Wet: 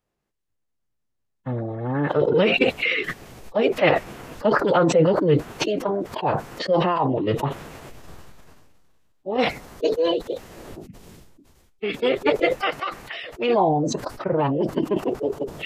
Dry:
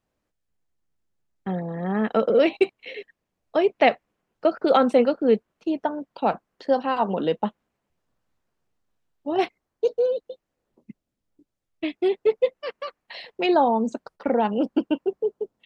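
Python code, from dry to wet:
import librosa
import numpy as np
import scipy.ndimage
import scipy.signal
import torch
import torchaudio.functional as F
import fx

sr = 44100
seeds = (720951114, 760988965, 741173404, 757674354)

y = fx.pitch_keep_formants(x, sr, semitones=-7.0)
y = fx.sustainer(y, sr, db_per_s=24.0)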